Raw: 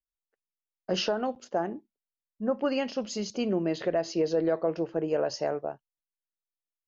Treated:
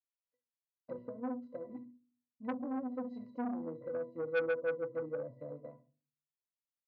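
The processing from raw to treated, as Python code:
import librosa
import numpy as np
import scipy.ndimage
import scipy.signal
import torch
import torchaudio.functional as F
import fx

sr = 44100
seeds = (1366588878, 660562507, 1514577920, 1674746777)

p1 = fx.rattle_buzz(x, sr, strikes_db=-45.0, level_db=-26.0)
p2 = fx.peak_eq(p1, sr, hz=130.0, db=-3.5, octaves=0.22)
p3 = fx.env_lowpass_down(p2, sr, base_hz=600.0, full_db=-26.0)
p4 = fx.peak_eq(p3, sr, hz=2400.0, db=-12.5, octaves=0.29)
p5 = fx.octave_resonator(p4, sr, note='B', decay_s=0.19)
p6 = p5 + fx.room_flutter(p5, sr, wall_m=11.9, rt60_s=0.29, dry=0)
p7 = fx.room_shoebox(p6, sr, seeds[0], volume_m3=210.0, walls='furnished', distance_m=0.43)
p8 = fx.transformer_sat(p7, sr, knee_hz=1100.0)
y = p8 * librosa.db_to_amplitude(3.5)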